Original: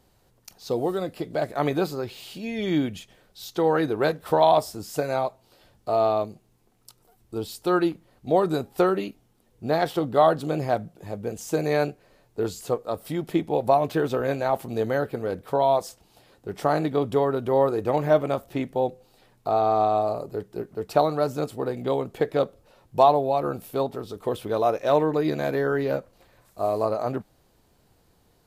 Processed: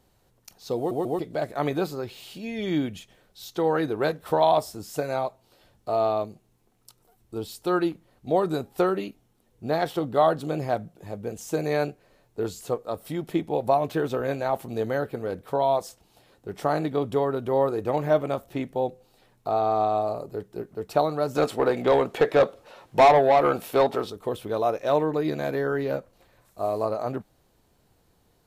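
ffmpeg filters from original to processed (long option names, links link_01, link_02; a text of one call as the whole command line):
ffmpeg -i in.wav -filter_complex "[0:a]asettb=1/sr,asplit=3[link_01][link_02][link_03];[link_01]atrim=end=21.354[link_04];[link_02]atrim=start=21.35:end=24.1,asetpts=PTS-STARTPTS,afade=type=in:duration=0.004:curve=qsin,afade=type=out:start_time=2.746:duration=0.004:curve=qsin,asplit=2[link_05][link_06];[link_06]highpass=frequency=720:poles=1,volume=20dB,asoftclip=type=tanh:threshold=-6dB[link_07];[link_05][link_07]amix=inputs=2:normalize=0,lowpass=frequency=3500:poles=1,volume=-6dB[link_08];[link_03]atrim=start=24.096[link_09];[link_04][link_08]acrossfade=duration=0.004:curve1=hsin:curve2=qsin[link_10];[link_10][link_09]acrossfade=duration=0.004:curve1=qsin:curve2=hsin,asplit=4[link_11][link_12][link_13][link_14];[link_11]atrim=end=0.912[link_15];[link_12]atrim=start=0.768:end=0.912[link_16];[link_13]atrim=start=0.768:end=0.912[link_17];[link_14]atrim=start=1.188[link_18];[link_15][link_16]acrossfade=duration=0.004:curve1=hsin:curve2=hsin[link_19];[link_19][link_17]acrossfade=duration=0.004:curve1=hsin:curve2=hsin[link_20];[link_20][link_18]acrossfade=duration=0.004:curve1=hsin:curve2=hsin,bandreject=frequency=4800:width=27,volume=-2dB" out.wav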